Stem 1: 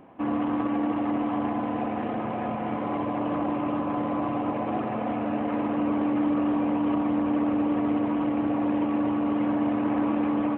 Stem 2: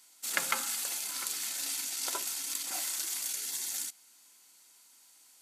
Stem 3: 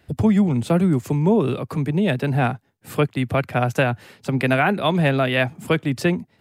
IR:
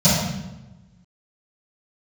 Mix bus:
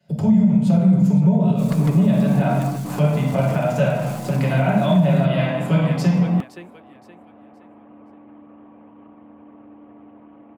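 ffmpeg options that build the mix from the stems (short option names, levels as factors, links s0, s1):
-filter_complex "[0:a]highshelf=f=3200:g=-9.5,adelay=1600,volume=0.668,asplit=2[s0][s1];[s1]volume=0.158[s2];[1:a]aeval=exprs='max(val(0),0)':c=same,adelay=1350,volume=0.631[s3];[2:a]highpass=210,volume=0.631,asplit=4[s4][s5][s6][s7];[s5]volume=0.1[s8];[s6]volume=0.2[s9];[s7]apad=whole_len=536886[s10];[s0][s10]sidechaingate=range=0.0224:threshold=0.00112:ratio=16:detection=peak[s11];[s3][s4]amix=inputs=2:normalize=0,agate=range=0.282:threshold=0.002:ratio=16:detection=peak,acompressor=threshold=0.0398:ratio=6,volume=1[s12];[3:a]atrim=start_sample=2205[s13];[s8][s13]afir=irnorm=-1:irlink=0[s14];[s2][s9]amix=inputs=2:normalize=0,aecho=0:1:520|1040|1560|2080:1|0.31|0.0961|0.0298[s15];[s11][s12][s14][s15]amix=inputs=4:normalize=0,alimiter=limit=0.398:level=0:latency=1:release=184"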